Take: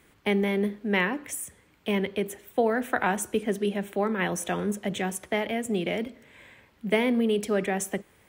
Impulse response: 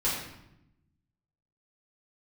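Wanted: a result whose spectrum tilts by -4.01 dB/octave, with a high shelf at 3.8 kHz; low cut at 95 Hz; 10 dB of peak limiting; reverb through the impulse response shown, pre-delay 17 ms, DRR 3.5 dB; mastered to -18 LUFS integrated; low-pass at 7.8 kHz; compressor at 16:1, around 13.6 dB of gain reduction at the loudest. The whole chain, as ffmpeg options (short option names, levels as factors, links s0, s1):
-filter_complex "[0:a]highpass=95,lowpass=7800,highshelf=f=3800:g=4.5,acompressor=threshold=0.0251:ratio=16,alimiter=level_in=1.78:limit=0.0631:level=0:latency=1,volume=0.562,asplit=2[s0][s1];[1:a]atrim=start_sample=2205,adelay=17[s2];[s1][s2]afir=irnorm=-1:irlink=0,volume=0.237[s3];[s0][s3]amix=inputs=2:normalize=0,volume=9.44"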